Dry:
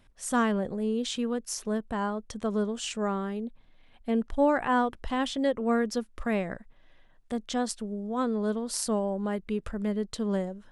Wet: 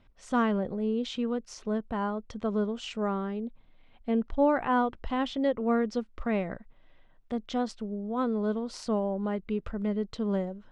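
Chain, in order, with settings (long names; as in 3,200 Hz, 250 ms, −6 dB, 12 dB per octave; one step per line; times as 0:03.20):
high-frequency loss of the air 160 metres
notch filter 1,700 Hz, Q 11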